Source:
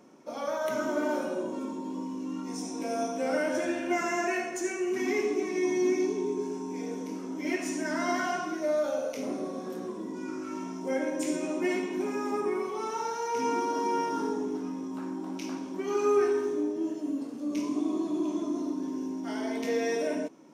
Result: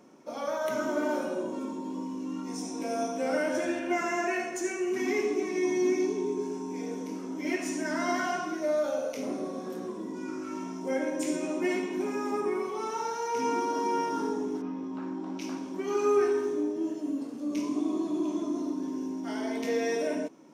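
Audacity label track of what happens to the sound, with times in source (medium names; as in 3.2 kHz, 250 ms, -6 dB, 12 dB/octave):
3.790000	4.400000	tone controls bass -2 dB, treble -3 dB
14.610000	15.390000	low-pass 3.1 kHz -> 5.8 kHz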